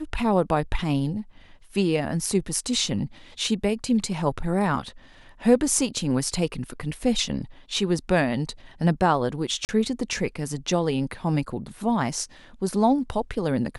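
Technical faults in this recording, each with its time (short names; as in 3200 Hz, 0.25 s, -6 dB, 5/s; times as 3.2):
9.65–9.69 gap 39 ms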